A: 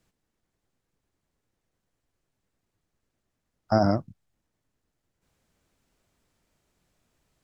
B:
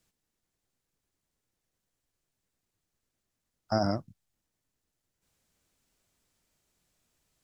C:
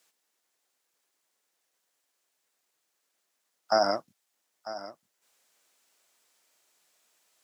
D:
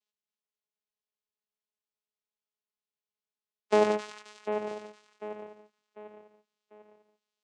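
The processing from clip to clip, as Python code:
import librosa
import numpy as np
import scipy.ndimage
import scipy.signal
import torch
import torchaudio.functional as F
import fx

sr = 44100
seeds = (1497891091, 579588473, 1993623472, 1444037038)

y1 = fx.high_shelf(x, sr, hz=3000.0, db=9.5)
y1 = y1 * 10.0 ** (-6.5 / 20.0)
y2 = scipy.signal.sosfilt(scipy.signal.butter(2, 560.0, 'highpass', fs=sr, output='sos'), y1)
y2 = y2 + 10.0 ** (-14.5 / 20.0) * np.pad(y2, (int(947 * sr / 1000.0), 0))[:len(y2)]
y2 = y2 * 10.0 ** (7.5 / 20.0)
y3 = fx.echo_split(y2, sr, split_hz=1200.0, low_ms=746, high_ms=266, feedback_pct=52, wet_db=-7)
y3 = fx.vocoder(y3, sr, bands=4, carrier='saw', carrier_hz=211.0)
y3 = fx.band_widen(y3, sr, depth_pct=40)
y3 = y3 * 10.0 ** (-2.0 / 20.0)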